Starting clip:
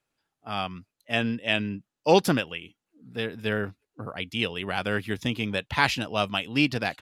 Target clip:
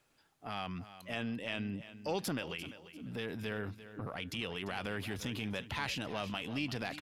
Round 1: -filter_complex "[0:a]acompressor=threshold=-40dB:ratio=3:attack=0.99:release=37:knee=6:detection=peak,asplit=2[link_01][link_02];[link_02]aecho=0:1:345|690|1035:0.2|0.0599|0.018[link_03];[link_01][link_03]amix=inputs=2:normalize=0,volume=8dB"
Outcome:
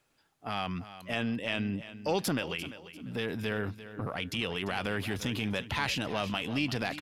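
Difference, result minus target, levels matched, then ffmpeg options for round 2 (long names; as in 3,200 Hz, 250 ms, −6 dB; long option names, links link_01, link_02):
downward compressor: peak gain reduction −6 dB
-filter_complex "[0:a]acompressor=threshold=-49dB:ratio=3:attack=0.99:release=37:knee=6:detection=peak,asplit=2[link_01][link_02];[link_02]aecho=0:1:345|690|1035:0.2|0.0599|0.018[link_03];[link_01][link_03]amix=inputs=2:normalize=0,volume=8dB"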